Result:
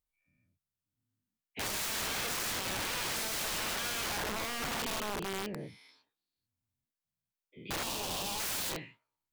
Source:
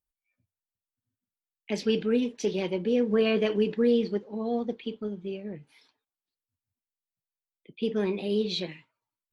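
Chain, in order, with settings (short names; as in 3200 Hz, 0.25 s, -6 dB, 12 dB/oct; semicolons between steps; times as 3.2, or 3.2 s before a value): spectral dilation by 0.24 s; wrapped overs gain 24.5 dB; 7.83–8.4 band shelf 1700 Hz -11.5 dB 1 oct; gain -6 dB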